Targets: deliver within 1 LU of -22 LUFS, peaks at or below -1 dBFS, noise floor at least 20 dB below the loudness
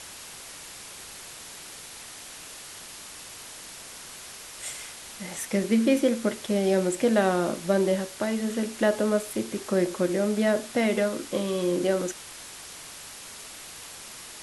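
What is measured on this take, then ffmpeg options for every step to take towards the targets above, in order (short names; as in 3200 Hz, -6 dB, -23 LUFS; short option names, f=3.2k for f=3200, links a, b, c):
noise floor -43 dBFS; noise floor target -46 dBFS; loudness -26.0 LUFS; peak -9.0 dBFS; loudness target -22.0 LUFS
-> -af "afftdn=nr=6:nf=-43"
-af "volume=4dB"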